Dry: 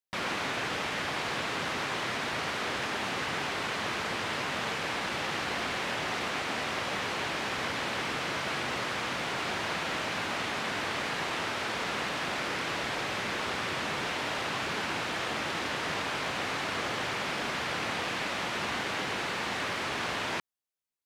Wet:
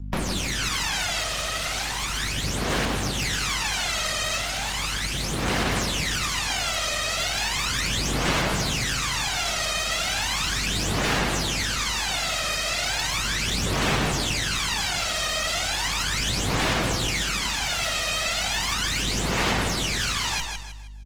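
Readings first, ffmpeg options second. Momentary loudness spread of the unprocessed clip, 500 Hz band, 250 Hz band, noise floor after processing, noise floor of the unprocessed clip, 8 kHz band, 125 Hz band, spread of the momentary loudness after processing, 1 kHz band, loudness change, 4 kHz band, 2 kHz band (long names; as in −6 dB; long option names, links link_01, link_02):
0 LU, +3.5 dB, +7.0 dB, −29 dBFS, −34 dBFS, +15.5 dB, +13.0 dB, 3 LU, +3.0 dB, +7.5 dB, +9.5 dB, +4.5 dB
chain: -filter_complex "[0:a]aresample=32000,aresample=44100,aeval=exprs='0.106*(cos(1*acos(clip(val(0)/0.106,-1,1)))-cos(1*PI/2))+0.00075*(cos(3*acos(clip(val(0)/0.106,-1,1)))-cos(3*PI/2))+0.00596*(cos(8*acos(clip(val(0)/0.106,-1,1)))-cos(8*PI/2))':channel_layout=same,aeval=exprs='val(0)+0.00355*(sin(2*PI*50*n/s)+sin(2*PI*2*50*n/s)/2+sin(2*PI*3*50*n/s)/3+sin(2*PI*4*50*n/s)/4+sin(2*PI*5*50*n/s)/5)':channel_layout=same,acrossover=split=200|3000[link_01][link_02][link_03];[link_02]acompressor=threshold=-38dB:ratio=8[link_04];[link_01][link_04][link_03]amix=inputs=3:normalize=0,equalizer=frequency=10000:width_type=o:width=2.9:gain=4,aphaser=in_gain=1:out_gain=1:delay=1.6:decay=0.78:speed=0.36:type=sinusoidal,asplit=2[link_05][link_06];[link_06]aecho=0:1:157|314|471|628:0.501|0.185|0.0686|0.0254[link_07];[link_05][link_07]amix=inputs=2:normalize=0,adynamicequalizer=threshold=0.00355:dfrequency=6800:dqfactor=2.3:tfrequency=6800:tqfactor=2.3:attack=5:release=100:ratio=0.375:range=2:mode=boostabove:tftype=bell,aeval=exprs='0.112*(abs(mod(val(0)/0.112+3,4)-2)-1)':channel_layout=same,volume=4dB" -ar 48000 -c:a libopus -b:a 20k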